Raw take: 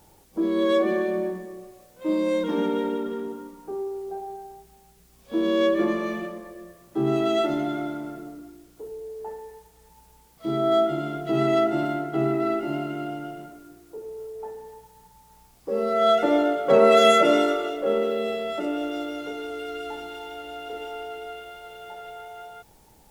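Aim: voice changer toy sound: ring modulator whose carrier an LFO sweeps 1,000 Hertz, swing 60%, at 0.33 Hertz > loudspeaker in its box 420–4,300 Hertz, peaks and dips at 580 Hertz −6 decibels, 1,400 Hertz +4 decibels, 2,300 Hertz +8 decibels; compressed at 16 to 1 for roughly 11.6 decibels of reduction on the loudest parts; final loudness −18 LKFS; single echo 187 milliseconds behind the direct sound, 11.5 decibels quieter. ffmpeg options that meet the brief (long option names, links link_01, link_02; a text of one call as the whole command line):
ffmpeg -i in.wav -af "acompressor=threshold=-23dB:ratio=16,aecho=1:1:187:0.266,aeval=exprs='val(0)*sin(2*PI*1000*n/s+1000*0.6/0.33*sin(2*PI*0.33*n/s))':channel_layout=same,highpass=420,equalizer=frequency=580:width_type=q:width=4:gain=-6,equalizer=frequency=1400:width_type=q:width=4:gain=4,equalizer=frequency=2300:width_type=q:width=4:gain=8,lowpass=frequency=4300:width=0.5412,lowpass=frequency=4300:width=1.3066,volume=12dB" out.wav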